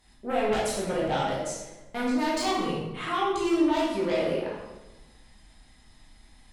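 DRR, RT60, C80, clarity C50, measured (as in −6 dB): −7.0 dB, 1.1 s, 3.5 dB, 0.0 dB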